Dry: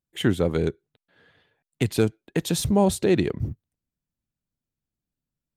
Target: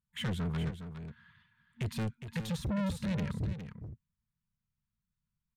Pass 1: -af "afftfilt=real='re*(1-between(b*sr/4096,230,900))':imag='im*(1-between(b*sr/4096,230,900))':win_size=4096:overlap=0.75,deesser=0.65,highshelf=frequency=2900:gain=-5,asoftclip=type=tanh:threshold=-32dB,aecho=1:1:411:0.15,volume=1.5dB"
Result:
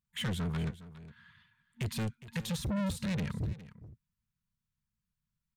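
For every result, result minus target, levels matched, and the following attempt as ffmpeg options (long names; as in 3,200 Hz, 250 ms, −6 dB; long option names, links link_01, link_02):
8,000 Hz band +4.5 dB; echo-to-direct −6.5 dB
-af "afftfilt=real='re*(1-between(b*sr/4096,230,900))':imag='im*(1-between(b*sr/4096,230,900))':win_size=4096:overlap=0.75,deesser=0.65,highshelf=frequency=2900:gain=-12,asoftclip=type=tanh:threshold=-32dB,aecho=1:1:411:0.15,volume=1.5dB"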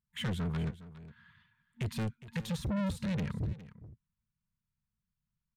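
echo-to-direct −6.5 dB
-af "afftfilt=real='re*(1-between(b*sr/4096,230,900))':imag='im*(1-between(b*sr/4096,230,900))':win_size=4096:overlap=0.75,deesser=0.65,highshelf=frequency=2900:gain=-12,asoftclip=type=tanh:threshold=-32dB,aecho=1:1:411:0.316,volume=1.5dB"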